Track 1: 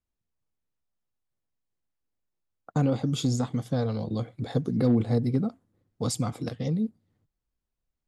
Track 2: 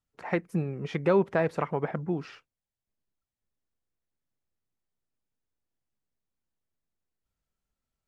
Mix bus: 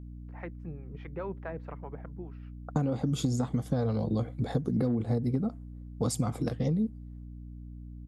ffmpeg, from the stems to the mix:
ffmpeg -i stem1.wav -i stem2.wav -filter_complex "[0:a]equalizer=frequency=3800:width=0.67:gain=-6.5,aeval=exprs='val(0)+0.00562*(sin(2*PI*60*n/s)+sin(2*PI*2*60*n/s)/2+sin(2*PI*3*60*n/s)/3+sin(2*PI*4*60*n/s)/4+sin(2*PI*5*60*n/s)/5)':channel_layout=same,volume=3dB[link_01];[1:a]lowpass=2600,acrossover=split=540[link_02][link_03];[link_02]aeval=exprs='val(0)*(1-0.7/2+0.7/2*cos(2*PI*4.8*n/s))':channel_layout=same[link_04];[link_03]aeval=exprs='val(0)*(1-0.7/2-0.7/2*cos(2*PI*4.8*n/s))':channel_layout=same[link_05];[link_04][link_05]amix=inputs=2:normalize=0,adelay=100,volume=-10.5dB[link_06];[link_01][link_06]amix=inputs=2:normalize=0,acompressor=threshold=-24dB:ratio=12" out.wav

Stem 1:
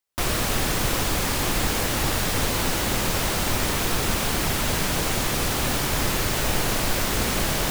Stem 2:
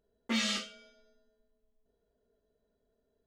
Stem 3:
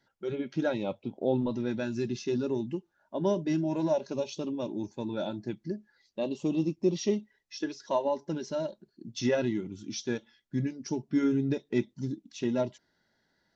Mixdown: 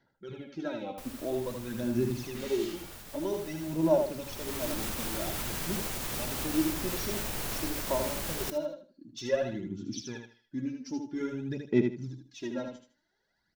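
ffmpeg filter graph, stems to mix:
ffmpeg -i stem1.wav -i stem2.wav -i stem3.wav -filter_complex "[0:a]highshelf=frequency=9800:gain=7.5,alimiter=limit=-13dB:level=0:latency=1:release=90,adelay=800,volume=-11.5dB,afade=type=in:start_time=4.2:duration=0.52:silence=0.251189,asplit=2[link_01][link_02];[link_02]volume=-15dB[link_03];[1:a]asoftclip=type=tanh:threshold=-35.5dB,adelay=2050,volume=-3dB,asplit=2[link_04][link_05];[link_05]volume=-4dB[link_06];[2:a]aphaser=in_gain=1:out_gain=1:delay=3.9:decay=0.72:speed=0.51:type=sinusoidal,volume=-8dB,asplit=3[link_07][link_08][link_09];[link_08]volume=-5.5dB[link_10];[link_09]apad=whole_len=234229[link_11];[link_04][link_11]sidechaincompress=threshold=-41dB:ratio=8:attack=16:release=227[link_12];[link_03][link_06][link_10]amix=inputs=3:normalize=0,aecho=0:1:78|156|234|312:1|0.24|0.0576|0.0138[link_13];[link_01][link_12][link_07][link_13]amix=inputs=4:normalize=0" out.wav

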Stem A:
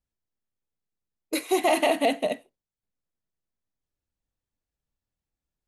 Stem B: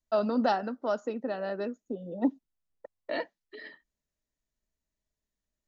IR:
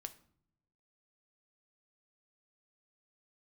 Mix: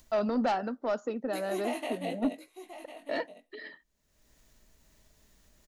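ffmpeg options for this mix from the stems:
-filter_complex "[0:a]flanger=delay=16:depth=5.8:speed=0.69,volume=-10.5dB,asplit=2[link_01][link_02];[link_02]volume=-12dB[link_03];[1:a]asoftclip=type=tanh:threshold=-21.5dB,volume=0.5dB[link_04];[link_03]aecho=0:1:1052:1[link_05];[link_01][link_04][link_05]amix=inputs=3:normalize=0,acompressor=mode=upward:threshold=-42dB:ratio=2.5"

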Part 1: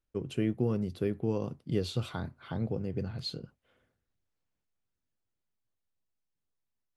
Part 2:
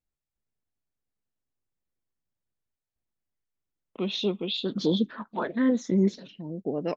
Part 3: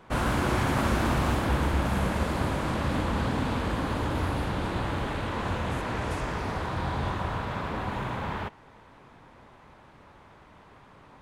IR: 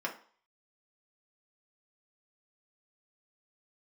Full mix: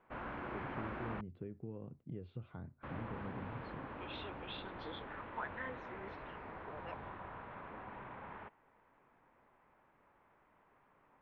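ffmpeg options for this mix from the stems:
-filter_complex "[0:a]lowshelf=frequency=450:gain=7.5,acompressor=threshold=-33dB:ratio=3,adelay=400,volume=-12dB[link_01];[1:a]highpass=1200,volume=-5.5dB[link_02];[2:a]equalizer=frequency=75:width_type=o:width=2.9:gain=-10,volume=-15dB,asplit=3[link_03][link_04][link_05];[link_03]atrim=end=1.21,asetpts=PTS-STARTPTS,afade=type=out:start_time=1.206:duration=0.004:curve=hsin[link_06];[link_04]atrim=start=1.21:end=2.83,asetpts=PTS-STARTPTS,volume=0[link_07];[link_05]atrim=start=2.83,asetpts=PTS-STARTPTS,afade=type=in:duration=0.004:curve=hsin[link_08];[link_06][link_07][link_08]concat=n=3:v=0:a=1[link_09];[link_01][link_02][link_09]amix=inputs=3:normalize=0,lowpass=frequency=2500:width=0.5412,lowpass=frequency=2500:width=1.3066"

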